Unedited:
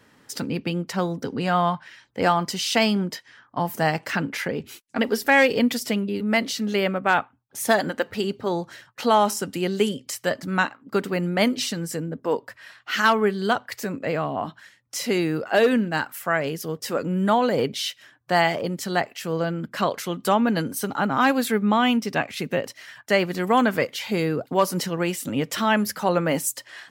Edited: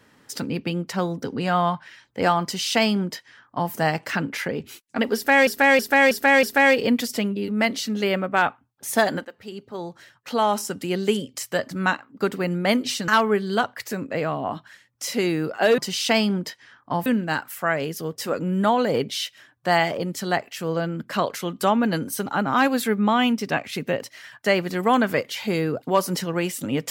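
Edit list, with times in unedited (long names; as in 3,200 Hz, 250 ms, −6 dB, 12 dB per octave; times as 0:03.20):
0:02.44–0:03.72: duplicate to 0:15.70
0:05.15–0:05.47: repeat, 5 plays
0:07.97–0:09.72: fade in, from −16 dB
0:11.80–0:13.00: remove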